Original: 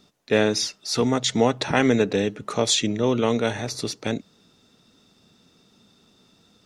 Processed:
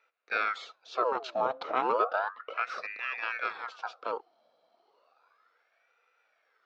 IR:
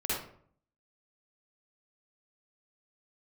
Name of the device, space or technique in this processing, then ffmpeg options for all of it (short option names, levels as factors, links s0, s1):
voice changer toy: -filter_complex "[0:a]asettb=1/sr,asplit=3[s0][s1][s2];[s0]atrim=end=2.194[s3];[s1]atrim=start=2.19:end=2.82,asetpts=PTS-STARTPTS,afade=t=in:d=0.004:c=qsin,afade=t=out:st=0.626:d=0.004:c=qsin,lowpass=f=2800:p=1[s4];[s2]atrim=start=2.816[s5];[s3][s4]acrossfade=d=0.004:c1=hsin:c2=qsin[s6];[s6][s5]acrossfade=d=0.004:c1=qsin:c2=hsin,aeval=exprs='val(0)*sin(2*PI*1300*n/s+1300*0.7/0.33*sin(2*PI*0.33*n/s))':c=same,highpass=430,equalizer=f=480:t=q:w=4:g=10,equalizer=f=690:t=q:w=4:g=7,equalizer=f=1300:t=q:w=4:g=8,equalizer=f=1900:t=q:w=4:g=-8,equalizer=f=3100:t=q:w=4:g=-7,lowpass=f=3800:w=0.5412,lowpass=f=3800:w=1.3066,volume=0.376"